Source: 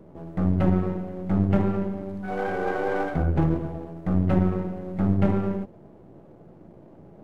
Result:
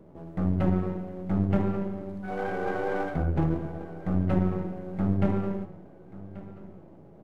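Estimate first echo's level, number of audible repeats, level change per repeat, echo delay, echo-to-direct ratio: -18.0 dB, 3, -8.0 dB, 1.134 s, -17.5 dB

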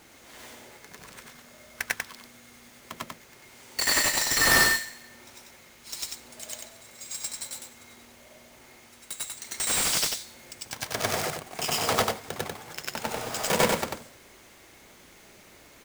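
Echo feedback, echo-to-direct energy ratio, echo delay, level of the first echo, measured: no steady repeat, -4.0 dB, 92 ms, -4.0 dB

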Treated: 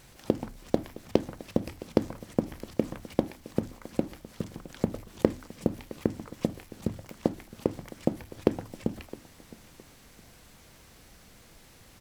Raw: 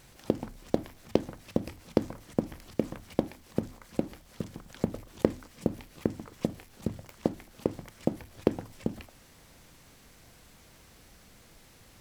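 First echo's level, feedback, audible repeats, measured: -19.0 dB, 29%, 2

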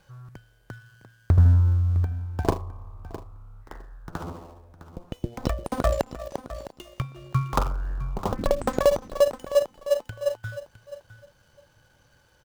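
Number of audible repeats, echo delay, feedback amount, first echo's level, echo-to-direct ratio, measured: 2, 0.659 s, 17%, -14.5 dB, -14.5 dB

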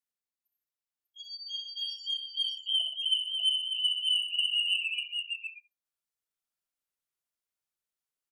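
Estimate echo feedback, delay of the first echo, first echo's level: no steady repeat, 64 ms, -6.5 dB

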